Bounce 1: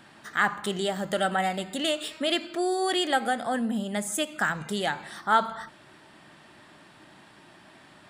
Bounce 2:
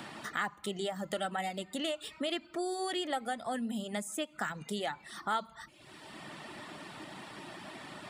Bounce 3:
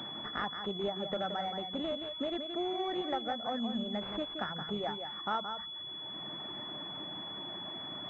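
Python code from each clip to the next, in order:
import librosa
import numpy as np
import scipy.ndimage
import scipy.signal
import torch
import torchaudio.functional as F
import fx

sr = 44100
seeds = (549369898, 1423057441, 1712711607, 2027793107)

y1 = fx.notch(x, sr, hz=1600.0, q=11.0)
y1 = fx.dereverb_blind(y1, sr, rt60_s=0.55)
y1 = fx.band_squash(y1, sr, depth_pct=70)
y1 = y1 * 10.0 ** (-7.5 / 20.0)
y2 = y1 + 10.0 ** (-7.5 / 20.0) * np.pad(y1, (int(173 * sr / 1000.0), 0))[:len(y1)]
y2 = fx.pwm(y2, sr, carrier_hz=3400.0)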